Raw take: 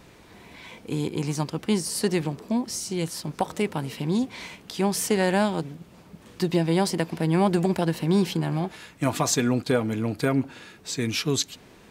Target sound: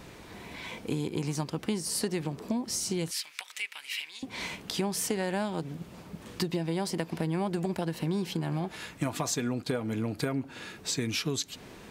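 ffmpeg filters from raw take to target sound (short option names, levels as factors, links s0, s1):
-filter_complex "[0:a]acompressor=threshold=0.0282:ratio=6,asettb=1/sr,asplit=3[s0][s1][s2];[s0]atrim=end=3.114[s3];[s1]atrim=start=3.11:end=4.23,asetpts=PTS-STARTPTS,afade=t=in:d=0.004:c=qsin,afade=t=out:st=1.116:d=0.004:c=qsin,highpass=f=2300:t=q:w=2.6[s4];[s2]atrim=start=4.226[s5];[s3][s4]acrossfade=d=0.004:c1=hsin:c2=qsin[s6];[s6][s5]acrossfade=d=0.004:c1=qsin:c2=hsin,volume=1.41"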